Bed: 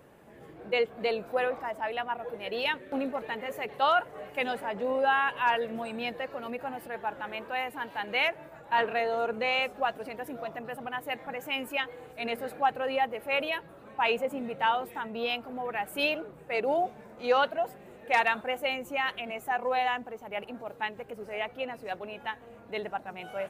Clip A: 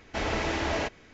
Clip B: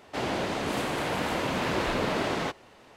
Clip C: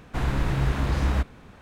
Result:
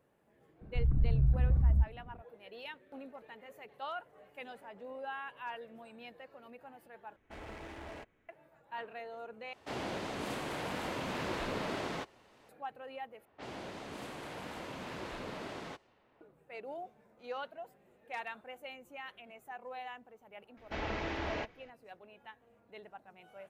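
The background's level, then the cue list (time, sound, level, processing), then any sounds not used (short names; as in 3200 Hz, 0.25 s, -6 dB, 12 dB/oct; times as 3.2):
bed -16.5 dB
0.61 add C -2.5 dB + formant sharpening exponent 3
7.16 replace with A -17.5 dB + Wiener smoothing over 9 samples
9.53 replace with B -9 dB
13.25 replace with B -15 dB + low-pass opened by the level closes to 1900 Hz, open at -27 dBFS
20.57 add A -8 dB + LPF 3900 Hz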